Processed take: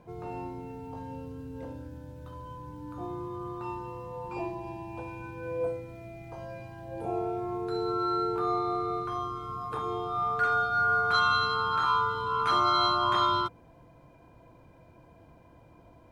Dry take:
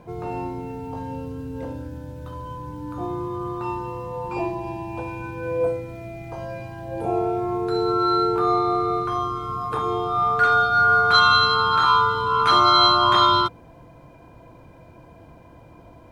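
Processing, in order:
dynamic equaliser 3,800 Hz, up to −5 dB, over −36 dBFS, Q 2.4
level −8.5 dB

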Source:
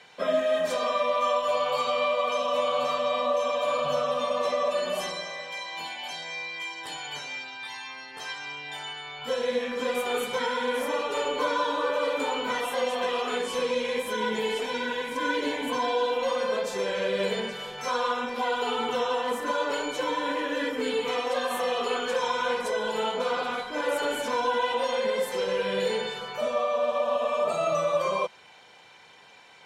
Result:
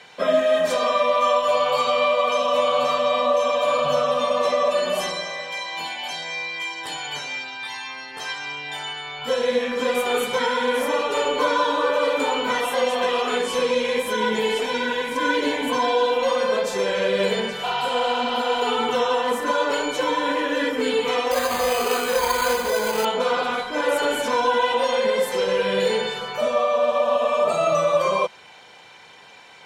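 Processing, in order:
0:17.67–0:18.58: healed spectral selection 570–6,500 Hz after
0:21.31–0:23.05: bad sample-rate conversion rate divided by 8×, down none, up hold
level +6 dB

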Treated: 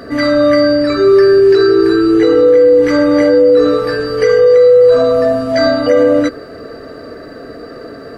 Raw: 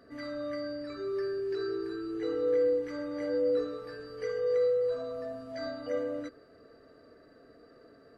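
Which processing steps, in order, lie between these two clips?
boost into a limiter +27.5 dB
level −1 dB

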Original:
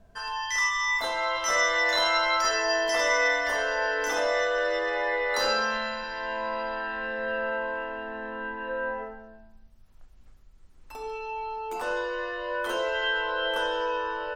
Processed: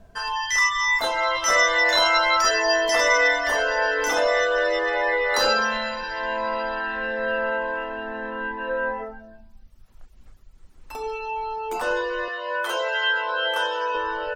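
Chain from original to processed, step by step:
reverb reduction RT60 0.56 s
0:12.28–0:13.95: high-pass filter 570 Hz 12 dB per octave
level +6.5 dB

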